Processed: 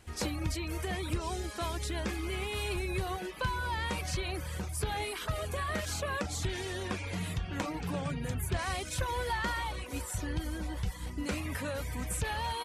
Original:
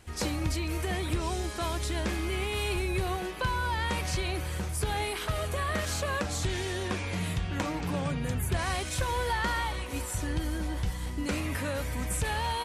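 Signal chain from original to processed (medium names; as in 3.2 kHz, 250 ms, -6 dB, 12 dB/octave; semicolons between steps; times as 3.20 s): reverb removal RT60 0.56 s; trim -2.5 dB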